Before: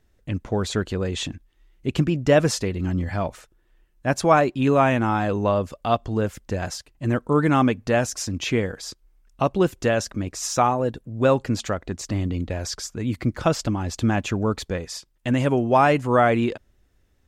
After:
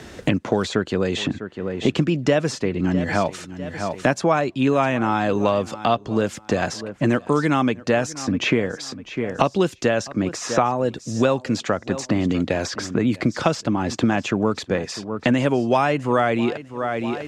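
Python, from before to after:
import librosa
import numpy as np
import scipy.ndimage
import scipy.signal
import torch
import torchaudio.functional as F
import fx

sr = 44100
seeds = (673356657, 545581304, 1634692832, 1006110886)

y = fx.bandpass_edges(x, sr, low_hz=140.0, high_hz=7600.0)
y = fx.echo_feedback(y, sr, ms=650, feedback_pct=19, wet_db=-21.5)
y = fx.band_squash(y, sr, depth_pct=100)
y = F.gain(torch.from_numpy(y), 1.5).numpy()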